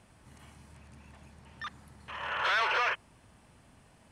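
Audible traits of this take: noise floor -61 dBFS; spectral tilt +1.0 dB/oct

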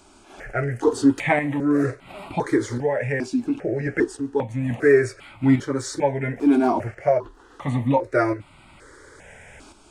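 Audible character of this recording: tremolo saw up 0.72 Hz, depth 55%; notches that jump at a steady rate 2.5 Hz 500–1700 Hz

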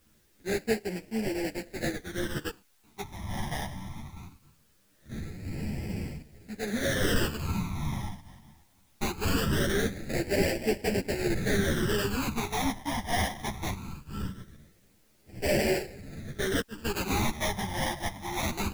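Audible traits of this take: aliases and images of a low sample rate 1200 Hz, jitter 20%; phasing stages 12, 0.21 Hz, lowest notch 450–1200 Hz; a quantiser's noise floor 12-bit, dither triangular; a shimmering, thickened sound

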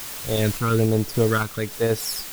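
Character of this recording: phasing stages 12, 1.2 Hz, lowest notch 570–3200 Hz; a quantiser's noise floor 6-bit, dither triangular; random-step tremolo

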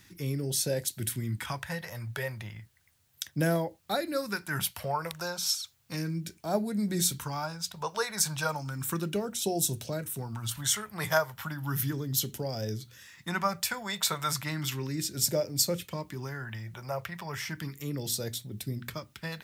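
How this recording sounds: phasing stages 2, 0.34 Hz, lowest notch 270–1100 Hz; a quantiser's noise floor 12-bit, dither triangular

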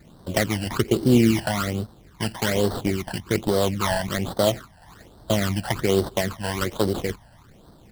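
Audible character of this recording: aliases and images of a low sample rate 2600 Hz, jitter 20%; phasing stages 12, 1.2 Hz, lowest notch 370–2400 Hz

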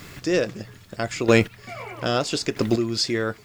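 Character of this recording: a quantiser's noise floor 10-bit, dither triangular; chopped level 0.78 Hz, depth 65%, duty 15%

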